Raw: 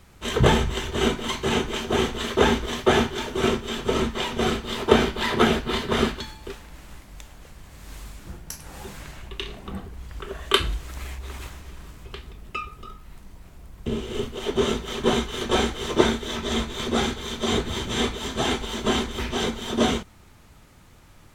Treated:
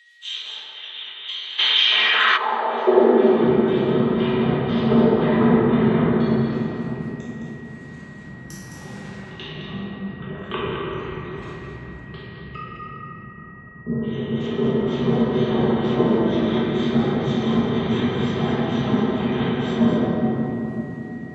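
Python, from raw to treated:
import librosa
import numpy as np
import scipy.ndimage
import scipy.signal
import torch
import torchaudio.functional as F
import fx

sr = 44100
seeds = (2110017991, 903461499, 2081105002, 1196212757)

y = fx.spec_erase(x, sr, start_s=12.56, length_s=1.47, low_hz=1700.0, high_hz=10000.0)
y = fx.env_lowpass_down(y, sr, base_hz=960.0, full_db=-18.0)
y = fx.spec_gate(y, sr, threshold_db=-30, keep='strong')
y = y + 10.0 ** (-37.0 / 20.0) * np.sin(2.0 * np.pi * 1900.0 * np.arange(len(y)) / sr)
y = y + 10.0 ** (-7.5 / 20.0) * np.pad(y, (int(214 * sr / 1000.0), 0))[:len(y)]
y = fx.filter_sweep_highpass(y, sr, from_hz=3400.0, to_hz=140.0, start_s=1.78, end_s=3.45, q=3.5)
y = fx.room_shoebox(y, sr, seeds[0], volume_m3=220.0, walls='hard', distance_m=1.4)
y = fx.env_flatten(y, sr, amount_pct=70, at=(1.58, 2.36), fade=0.02)
y = F.gain(torch.from_numpy(y), -8.5).numpy()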